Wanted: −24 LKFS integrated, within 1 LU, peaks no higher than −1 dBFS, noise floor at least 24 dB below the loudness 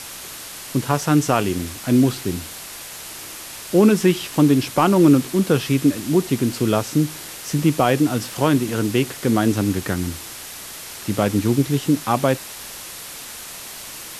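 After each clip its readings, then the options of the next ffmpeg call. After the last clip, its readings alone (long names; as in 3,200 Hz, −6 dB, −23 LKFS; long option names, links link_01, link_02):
background noise floor −36 dBFS; target noise floor −44 dBFS; integrated loudness −19.5 LKFS; sample peak −3.5 dBFS; target loudness −24.0 LKFS
→ -af "afftdn=noise_reduction=8:noise_floor=-36"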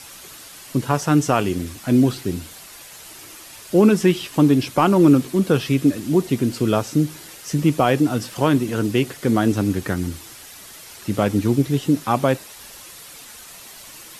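background noise floor −41 dBFS; target noise floor −44 dBFS
→ -af "afftdn=noise_reduction=6:noise_floor=-41"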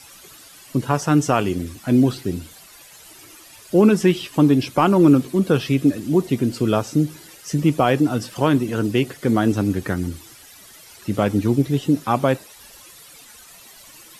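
background noise floor −45 dBFS; integrated loudness −19.5 LKFS; sample peak −4.0 dBFS; target loudness −24.0 LKFS
→ -af "volume=-4.5dB"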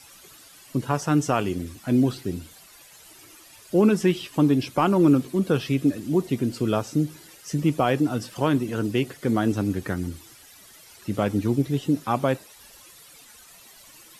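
integrated loudness −24.0 LKFS; sample peak −8.5 dBFS; background noise floor −50 dBFS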